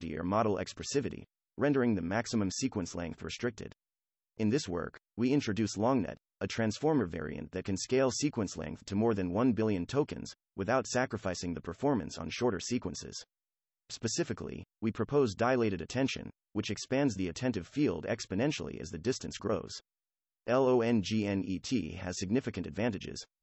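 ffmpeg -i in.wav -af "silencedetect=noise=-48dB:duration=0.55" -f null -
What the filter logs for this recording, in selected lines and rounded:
silence_start: 3.72
silence_end: 4.40 | silence_duration: 0.67
silence_start: 13.23
silence_end: 13.90 | silence_duration: 0.67
silence_start: 19.79
silence_end: 20.47 | silence_duration: 0.68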